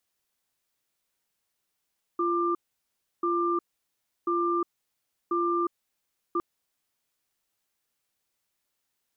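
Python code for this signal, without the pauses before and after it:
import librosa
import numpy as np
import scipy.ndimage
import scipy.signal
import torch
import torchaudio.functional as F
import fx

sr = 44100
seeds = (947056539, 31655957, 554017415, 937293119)

y = fx.cadence(sr, length_s=4.21, low_hz=345.0, high_hz=1190.0, on_s=0.36, off_s=0.68, level_db=-26.0)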